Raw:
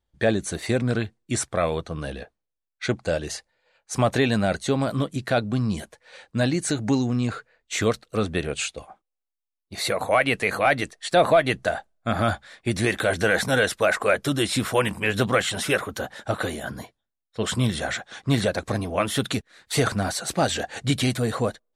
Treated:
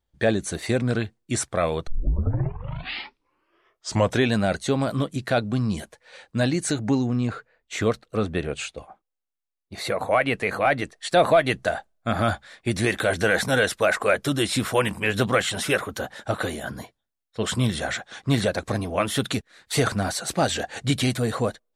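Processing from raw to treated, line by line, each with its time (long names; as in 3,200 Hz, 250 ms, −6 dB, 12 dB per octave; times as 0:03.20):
0:01.87: tape start 2.46 s
0:06.79–0:10.96: high-shelf EQ 3,000 Hz −7.5 dB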